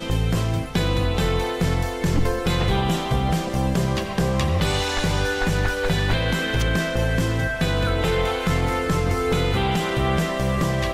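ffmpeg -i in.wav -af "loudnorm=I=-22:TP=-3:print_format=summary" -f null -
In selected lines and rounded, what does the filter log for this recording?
Input Integrated:    -22.4 LUFS
Input True Peak:      -8.2 dBTP
Input LRA:             0.5 LU
Input Threshold:     -32.4 LUFS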